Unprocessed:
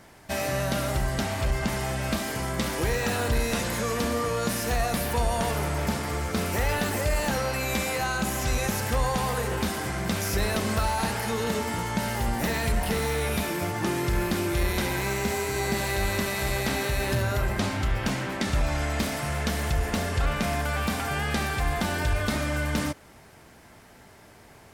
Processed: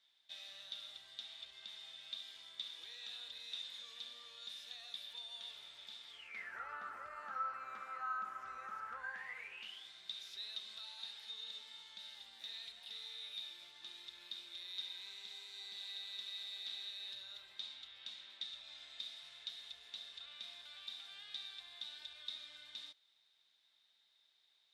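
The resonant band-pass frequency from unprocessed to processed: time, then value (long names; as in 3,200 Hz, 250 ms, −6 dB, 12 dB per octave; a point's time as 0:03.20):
resonant band-pass, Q 17
0:06.10 3,600 Hz
0:06.64 1,300 Hz
0:08.90 1,300 Hz
0:09.90 3,700 Hz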